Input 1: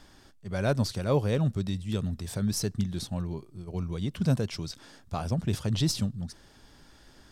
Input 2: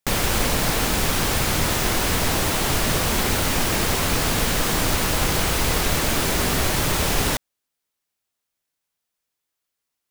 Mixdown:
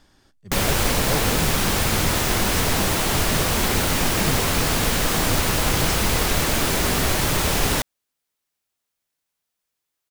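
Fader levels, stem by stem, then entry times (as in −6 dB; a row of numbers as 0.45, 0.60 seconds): −3.0, +0.5 decibels; 0.00, 0.45 seconds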